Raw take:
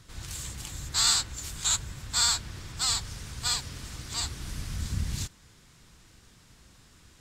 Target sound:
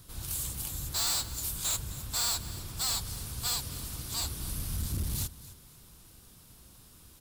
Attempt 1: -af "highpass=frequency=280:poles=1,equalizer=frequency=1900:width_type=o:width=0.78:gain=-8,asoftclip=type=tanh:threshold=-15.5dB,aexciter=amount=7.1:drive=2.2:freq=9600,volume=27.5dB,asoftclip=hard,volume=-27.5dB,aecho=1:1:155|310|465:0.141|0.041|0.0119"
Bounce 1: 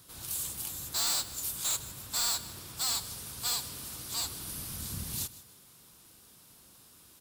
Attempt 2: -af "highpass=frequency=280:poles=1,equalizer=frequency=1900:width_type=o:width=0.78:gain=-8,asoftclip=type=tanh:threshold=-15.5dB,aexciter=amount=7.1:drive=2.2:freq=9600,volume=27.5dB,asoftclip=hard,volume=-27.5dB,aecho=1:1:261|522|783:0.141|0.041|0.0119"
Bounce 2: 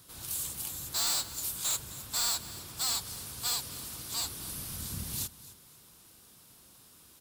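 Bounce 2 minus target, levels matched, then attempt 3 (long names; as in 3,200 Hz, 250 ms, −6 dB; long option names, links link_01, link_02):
250 Hz band −3.5 dB
-af "equalizer=frequency=1900:width_type=o:width=0.78:gain=-8,asoftclip=type=tanh:threshold=-15.5dB,aexciter=amount=7.1:drive=2.2:freq=9600,volume=27.5dB,asoftclip=hard,volume=-27.5dB,aecho=1:1:261|522|783:0.141|0.041|0.0119"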